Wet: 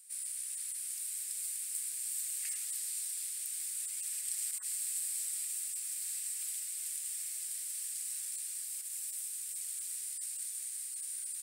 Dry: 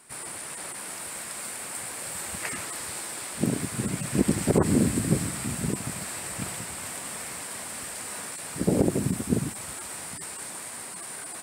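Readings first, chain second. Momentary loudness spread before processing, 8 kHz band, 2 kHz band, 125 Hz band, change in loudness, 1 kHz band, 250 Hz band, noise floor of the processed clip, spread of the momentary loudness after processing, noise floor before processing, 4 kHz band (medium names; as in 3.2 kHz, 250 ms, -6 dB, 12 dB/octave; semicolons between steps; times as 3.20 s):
11 LU, -1.5 dB, -18.0 dB, under -40 dB, -6.5 dB, under -30 dB, under -40 dB, -42 dBFS, 3 LU, -39 dBFS, -8.0 dB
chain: Bessel high-pass 2.4 kHz, order 4; differentiator; trim -2.5 dB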